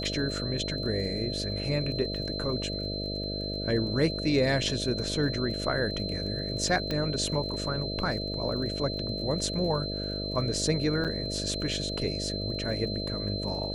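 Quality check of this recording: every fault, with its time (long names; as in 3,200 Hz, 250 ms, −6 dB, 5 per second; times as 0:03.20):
mains buzz 50 Hz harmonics 13 −35 dBFS
surface crackle 26 per second −39 dBFS
whistle 4,100 Hz −35 dBFS
0:06.91: click −18 dBFS
0:11.04–0:11.05: drop-out 7.1 ms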